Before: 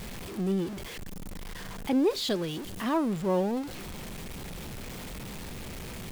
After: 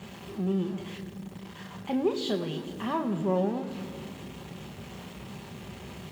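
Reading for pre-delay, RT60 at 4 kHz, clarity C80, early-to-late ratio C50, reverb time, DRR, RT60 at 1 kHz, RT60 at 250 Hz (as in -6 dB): 3 ms, 1.5 s, 11.5 dB, 10.5 dB, 2.3 s, 4.0 dB, 2.2 s, 3.3 s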